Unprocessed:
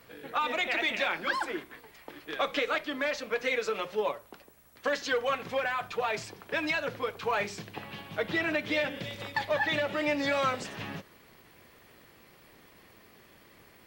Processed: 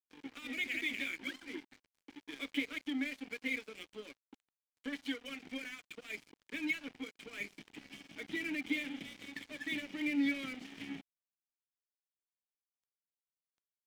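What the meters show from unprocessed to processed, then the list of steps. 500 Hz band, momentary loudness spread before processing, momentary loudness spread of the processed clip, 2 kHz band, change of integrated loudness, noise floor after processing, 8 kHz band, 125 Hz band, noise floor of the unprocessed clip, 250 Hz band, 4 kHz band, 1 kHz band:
−20.0 dB, 12 LU, 15 LU, −8.5 dB, −8.5 dB, below −85 dBFS, −9.0 dB, −16.5 dB, −58 dBFS, −1.0 dB, −8.5 dB, −24.5 dB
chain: in parallel at 0 dB: downward compressor 12 to 1, threshold −38 dBFS, peak gain reduction 14.5 dB
on the sum: formant filter i
dead-zone distortion −52 dBFS
level +3 dB

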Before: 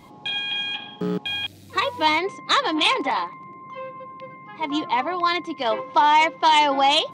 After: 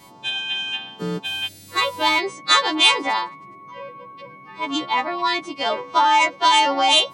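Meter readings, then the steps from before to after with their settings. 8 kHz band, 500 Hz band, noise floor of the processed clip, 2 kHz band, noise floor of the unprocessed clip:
+9.0 dB, −0.5 dB, −44 dBFS, +2.5 dB, −45 dBFS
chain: every partial snapped to a pitch grid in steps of 2 semitones

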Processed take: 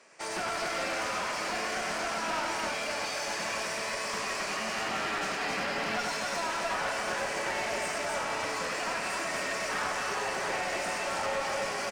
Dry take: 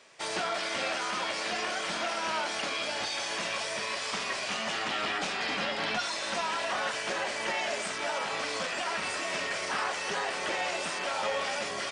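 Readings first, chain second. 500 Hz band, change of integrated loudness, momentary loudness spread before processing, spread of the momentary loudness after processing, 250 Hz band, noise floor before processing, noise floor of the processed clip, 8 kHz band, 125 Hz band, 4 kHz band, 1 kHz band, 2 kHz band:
+0.5 dB, −0.5 dB, 2 LU, 1 LU, +1.0 dB, −35 dBFS, −34 dBFS, +1.0 dB, +2.0 dB, −3.5 dB, +0.5 dB, 0.0 dB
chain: high-pass filter 120 Hz 24 dB per octave
parametric band 3,500 Hz −11 dB 0.49 octaves
loudspeakers that aren't time-aligned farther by 34 metres −5 dB, 92 metres −3 dB
asymmetric clip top −32 dBFS

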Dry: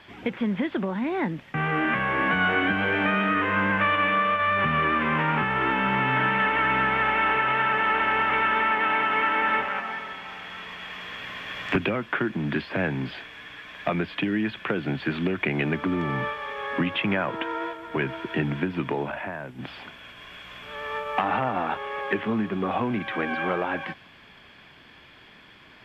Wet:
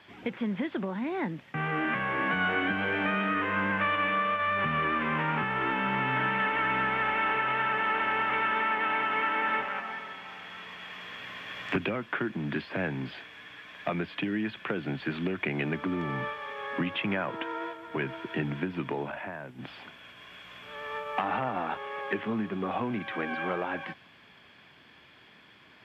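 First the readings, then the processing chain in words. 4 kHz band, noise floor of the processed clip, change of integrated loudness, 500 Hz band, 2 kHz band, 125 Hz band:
−5.0 dB, −56 dBFS, −5.0 dB, −5.0 dB, −5.0 dB, −5.5 dB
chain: high-pass filter 83 Hz
level −5 dB

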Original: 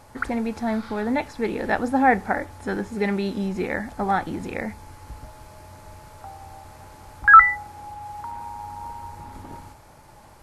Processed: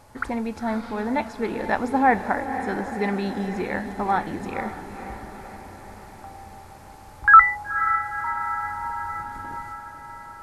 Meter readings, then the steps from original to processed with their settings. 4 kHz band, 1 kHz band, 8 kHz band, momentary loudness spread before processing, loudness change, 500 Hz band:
−1.5 dB, +0.5 dB, can't be measured, 21 LU, −1.5 dB, −1.0 dB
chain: dynamic equaliser 1,000 Hz, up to +7 dB, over −41 dBFS, Q 3.5
on a send: feedback delay with all-pass diffusion 501 ms, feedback 61%, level −10 dB
on the sum: level −2 dB

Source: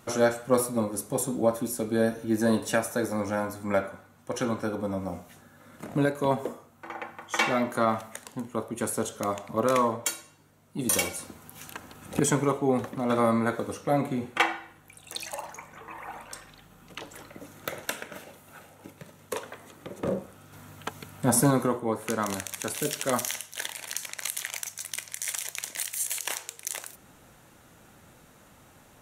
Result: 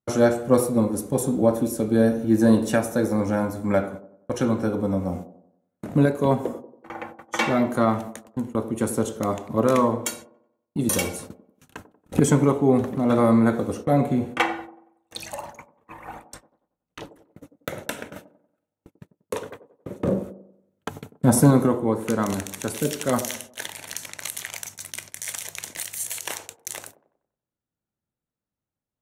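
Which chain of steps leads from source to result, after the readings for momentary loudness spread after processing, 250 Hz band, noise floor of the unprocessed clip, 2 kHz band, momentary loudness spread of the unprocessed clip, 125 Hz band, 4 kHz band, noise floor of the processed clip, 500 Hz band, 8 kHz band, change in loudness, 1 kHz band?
19 LU, +7.5 dB, −56 dBFS, +0.5 dB, 18 LU, +8.5 dB, 0.0 dB, below −85 dBFS, +5.0 dB, 0.0 dB, +5.5 dB, +2.0 dB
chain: noise gate −41 dBFS, range −41 dB
low-shelf EQ 470 Hz +9.5 dB
delay with a band-pass on its return 93 ms, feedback 43%, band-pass 400 Hz, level −10.5 dB

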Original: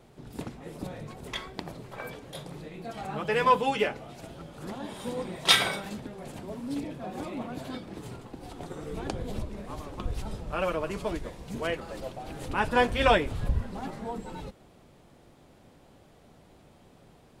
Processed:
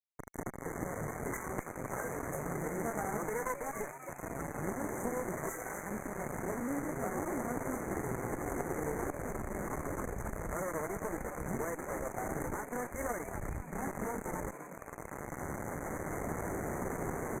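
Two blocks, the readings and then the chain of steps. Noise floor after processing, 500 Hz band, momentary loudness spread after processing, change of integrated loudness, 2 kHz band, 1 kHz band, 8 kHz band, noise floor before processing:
−49 dBFS, −5.0 dB, 5 LU, −8.0 dB, −8.0 dB, −7.5 dB, −1.0 dB, −57 dBFS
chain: camcorder AGC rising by 8 dB per second
dynamic equaliser 390 Hz, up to +6 dB, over −38 dBFS, Q 2.1
downward compressor 6 to 1, threshold −32 dBFS, peak gain reduction 17.5 dB
spectral peaks only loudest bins 64
bit-depth reduction 6 bits, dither none
harmonic generator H 7 −24 dB, 8 −20 dB, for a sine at −12 dBFS
linear-phase brick-wall band-stop 2,200–5,900 Hz
on a send: echo with shifted repeats 266 ms, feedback 44%, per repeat +130 Hz, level −10.5 dB
on the sum: downsampling to 32,000 Hz
saturating transformer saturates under 330 Hz

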